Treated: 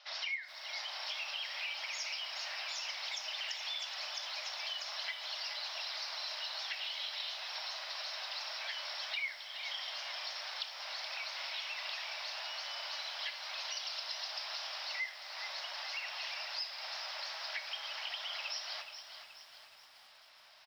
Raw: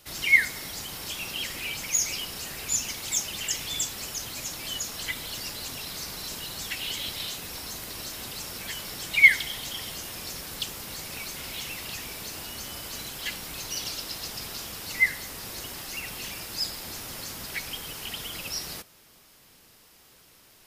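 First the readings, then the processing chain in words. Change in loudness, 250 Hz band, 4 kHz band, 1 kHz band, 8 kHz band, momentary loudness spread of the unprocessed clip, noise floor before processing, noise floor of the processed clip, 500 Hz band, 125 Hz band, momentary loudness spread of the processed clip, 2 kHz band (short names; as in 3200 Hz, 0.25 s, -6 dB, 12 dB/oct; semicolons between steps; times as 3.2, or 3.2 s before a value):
-10.0 dB, under -35 dB, -4.0 dB, -2.0 dB, -19.5 dB, 11 LU, -56 dBFS, -58 dBFS, -7.5 dB, under -40 dB, 3 LU, -13.5 dB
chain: Chebyshev band-pass 600–5400 Hz, order 5; compressor 12:1, threshold -37 dBFS, peak gain reduction 27 dB; early reflections 32 ms -16 dB, 64 ms -15.5 dB; lo-fi delay 0.424 s, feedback 55%, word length 10-bit, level -9 dB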